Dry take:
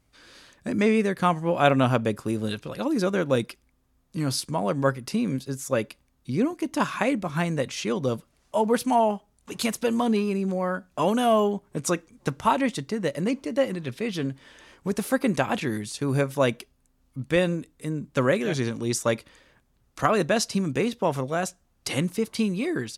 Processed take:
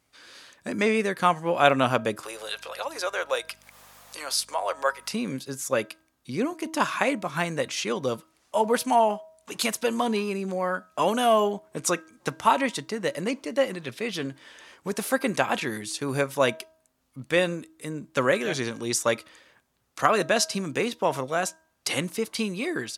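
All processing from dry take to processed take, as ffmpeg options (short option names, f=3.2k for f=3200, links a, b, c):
-filter_complex "[0:a]asettb=1/sr,asplit=3[a][b][c];[a]atrim=end=2.234[d];[b]atrim=start=2.23:end=5.13,asetpts=PTS-STARTPTS,afade=t=in:d=0.004:c=qsin,afade=t=out:st=2.896:d=0.004:c=qsin,highpass=f=540:w=0.5412,highpass=f=540:w=1.3066,acompressor=mode=upward:threshold=-32dB:ratio=2.5:attack=3.2:release=140:knee=2.83:detection=peak,aeval=exprs='val(0)+0.00251*(sin(2*PI*50*n/s)+sin(2*PI*2*50*n/s)/2+sin(2*PI*3*50*n/s)/3+sin(2*PI*4*50*n/s)/4+sin(2*PI*5*50*n/s)/5)':c=same[e];[c]atrim=start=5.126[f];[d][e]acrossfade=d=0.004:c1=hsin:c2=qsin[g];[g][f]acrossfade=d=0.004:c1=qsin:c2=hsin,highpass=63,lowshelf=f=310:g=-12,bandreject=f=319.4:t=h:w=4,bandreject=f=638.8:t=h:w=4,bandreject=f=958.2:t=h:w=4,bandreject=f=1.2776k:t=h:w=4,bandreject=f=1.597k:t=h:w=4,volume=3dB"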